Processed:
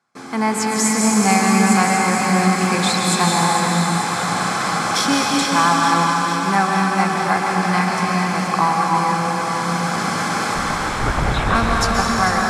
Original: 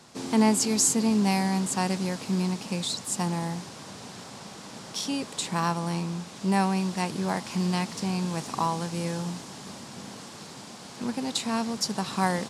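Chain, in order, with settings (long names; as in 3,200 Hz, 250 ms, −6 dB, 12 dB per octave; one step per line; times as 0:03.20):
noise gate with hold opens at −37 dBFS
flat-topped bell 1,300 Hz +11.5 dB
automatic gain control gain up to 16 dB
notch comb filter 930 Hz
0:10.54–0:11.55: linear-prediction vocoder at 8 kHz whisper
feedback echo with a high-pass in the loop 444 ms, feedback 71%, level −10 dB
convolution reverb RT60 4.9 s, pre-delay 118 ms, DRR −2.5 dB
level −2 dB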